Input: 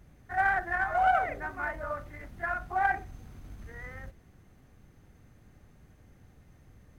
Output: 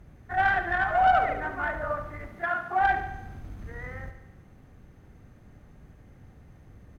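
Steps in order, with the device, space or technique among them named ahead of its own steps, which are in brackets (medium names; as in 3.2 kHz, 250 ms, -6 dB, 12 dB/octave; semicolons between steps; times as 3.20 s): tube preamp driven hard (valve stage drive 18 dB, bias 0.4; treble shelf 3 kHz -8.5 dB); 2.27–2.81 s: high-pass 180 Hz 12 dB/octave; feedback delay 72 ms, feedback 60%, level -10.5 dB; trim +6.5 dB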